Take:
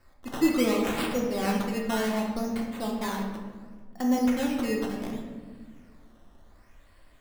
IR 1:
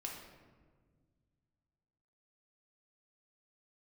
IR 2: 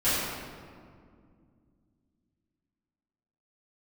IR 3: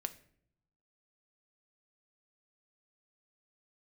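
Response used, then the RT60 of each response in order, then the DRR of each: 1; 1.6 s, 2.2 s, 0.65 s; -1.5 dB, -16.0 dB, 9.5 dB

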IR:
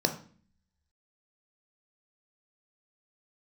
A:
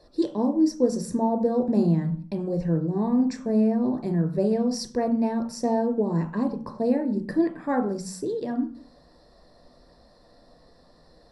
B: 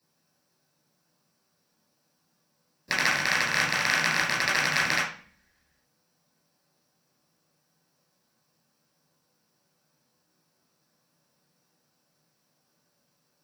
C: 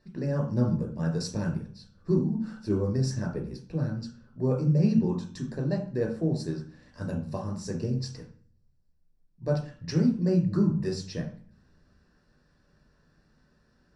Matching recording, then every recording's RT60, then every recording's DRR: A; 0.45 s, 0.45 s, 0.45 s; 5.0 dB, -7.5 dB, -0.5 dB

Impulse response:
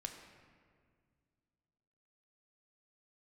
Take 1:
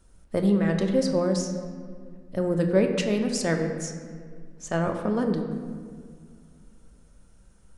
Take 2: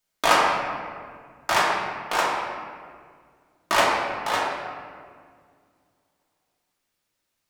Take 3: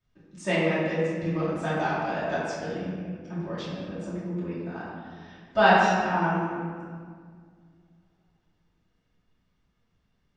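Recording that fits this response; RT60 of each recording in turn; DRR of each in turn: 1; 2.0 s, 1.9 s, 1.9 s; 3.5 dB, -5.0 dB, -13.0 dB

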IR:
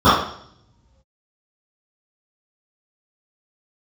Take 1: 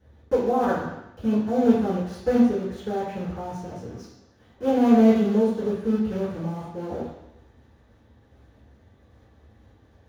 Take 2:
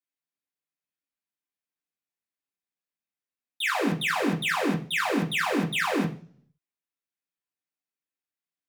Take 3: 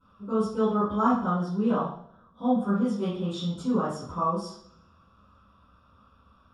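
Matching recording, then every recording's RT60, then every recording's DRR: 3; 0.90 s, 0.40 s, 0.65 s; -11.5 dB, -2.5 dB, -19.0 dB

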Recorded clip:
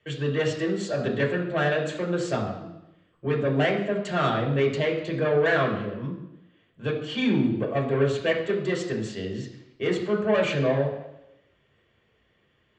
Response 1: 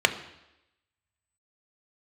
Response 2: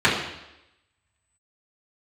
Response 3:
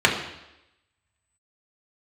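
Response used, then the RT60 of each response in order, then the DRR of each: 3; 0.90 s, 0.90 s, 0.90 s; 7.0 dB, -9.5 dB, -2.0 dB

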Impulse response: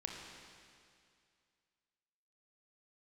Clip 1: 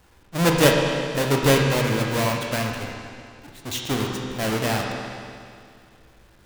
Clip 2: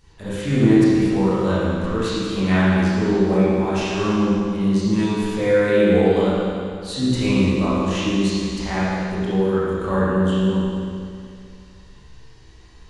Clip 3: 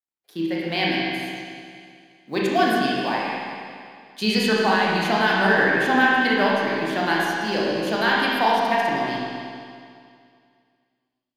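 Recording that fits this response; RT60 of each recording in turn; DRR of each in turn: 1; 2.3 s, 2.3 s, 2.3 s; 0.0 dB, -11.0 dB, -5.5 dB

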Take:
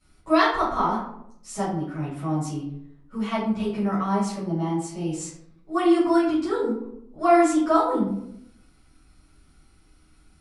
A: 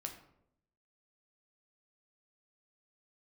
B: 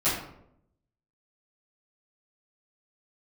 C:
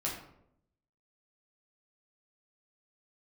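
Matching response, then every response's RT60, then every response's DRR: B; 0.75 s, 0.75 s, 0.75 s; 3.0 dB, -14.5 dB, -5.0 dB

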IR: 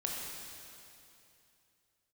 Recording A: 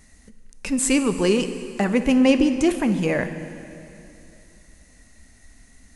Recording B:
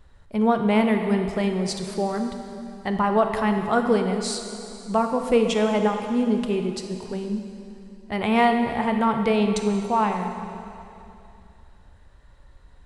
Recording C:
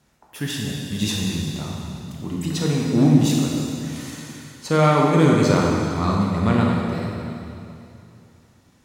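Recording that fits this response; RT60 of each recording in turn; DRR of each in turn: C; 2.8 s, 2.8 s, 2.8 s; 9.0 dB, 4.5 dB, -2.5 dB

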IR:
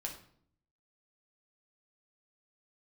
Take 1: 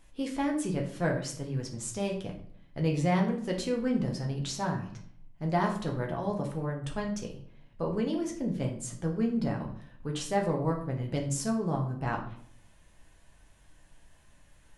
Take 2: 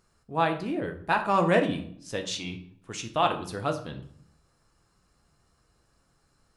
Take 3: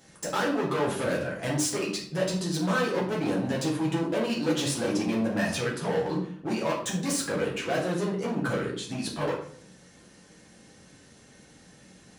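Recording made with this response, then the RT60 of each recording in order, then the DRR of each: 1; 0.60 s, 0.60 s, 0.60 s; 0.0 dB, 4.0 dB, -5.0 dB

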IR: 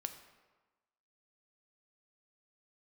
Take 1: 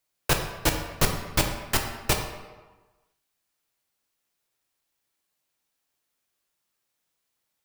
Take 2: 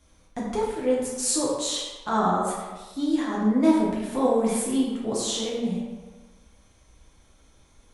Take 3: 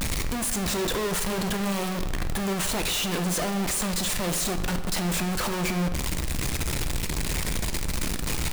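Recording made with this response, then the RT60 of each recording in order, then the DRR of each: 3; 1.3 s, 1.3 s, 1.2 s; 3.0 dB, -5.5 dB, 7.0 dB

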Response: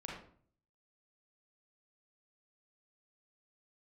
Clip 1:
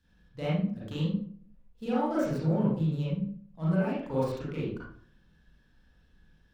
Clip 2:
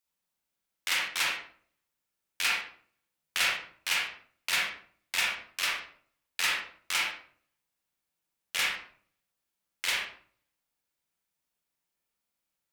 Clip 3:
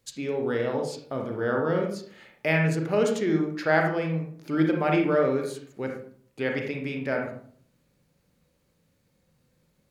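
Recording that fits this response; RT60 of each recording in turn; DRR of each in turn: 2; 0.50 s, 0.50 s, 0.50 s; -9.5 dB, -3.5 dB, 1.5 dB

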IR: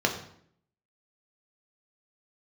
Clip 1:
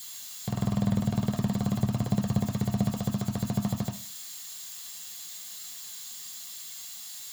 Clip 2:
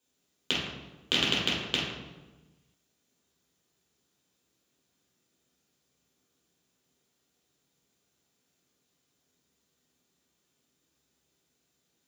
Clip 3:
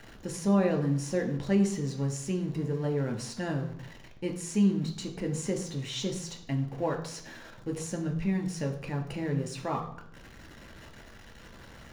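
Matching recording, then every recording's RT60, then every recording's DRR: 3; 0.45 s, 1.2 s, 0.65 s; 0.5 dB, -7.5 dB, 2.0 dB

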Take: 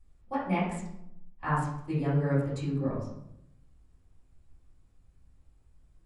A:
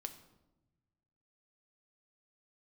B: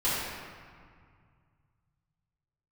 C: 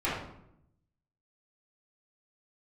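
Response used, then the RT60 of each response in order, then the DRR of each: C; 1.0 s, 2.0 s, 0.75 s; 7.0 dB, -11.5 dB, -12.0 dB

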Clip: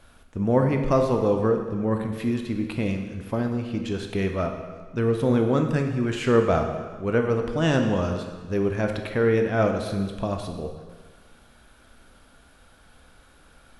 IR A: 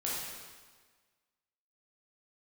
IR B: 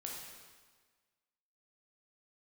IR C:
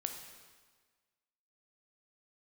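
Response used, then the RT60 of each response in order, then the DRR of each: C; 1.5 s, 1.5 s, 1.5 s; -7.0 dB, -2.5 dB, 4.5 dB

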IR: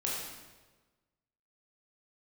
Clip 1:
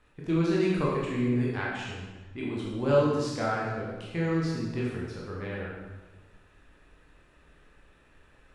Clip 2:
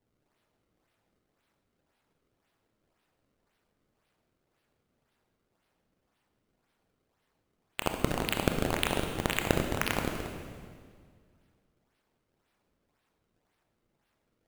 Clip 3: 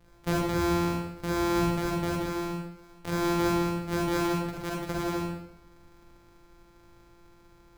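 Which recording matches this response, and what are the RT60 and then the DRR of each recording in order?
1; 1.3 s, 2.0 s, 0.85 s; -5.0 dB, 4.0 dB, -4.0 dB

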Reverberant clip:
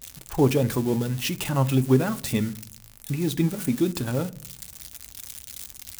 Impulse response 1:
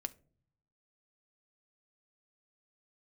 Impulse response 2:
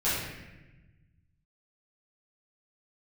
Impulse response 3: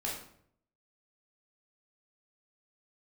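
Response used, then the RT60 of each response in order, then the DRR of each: 1; no single decay rate, 1.1 s, 0.65 s; 10.0 dB, -12.0 dB, -4.5 dB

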